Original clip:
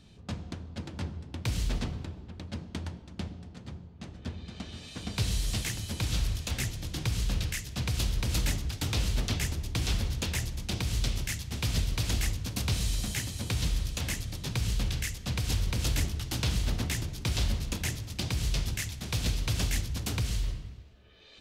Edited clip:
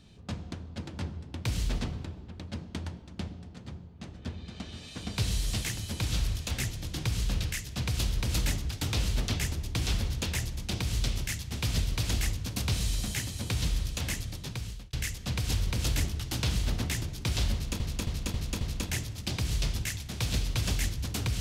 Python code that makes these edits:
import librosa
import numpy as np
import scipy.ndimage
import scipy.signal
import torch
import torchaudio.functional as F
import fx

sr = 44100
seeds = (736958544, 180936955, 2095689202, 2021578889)

y = fx.edit(x, sr, fx.fade_out_span(start_s=14.25, length_s=0.68),
    fx.repeat(start_s=17.53, length_s=0.27, count=5), tone=tone)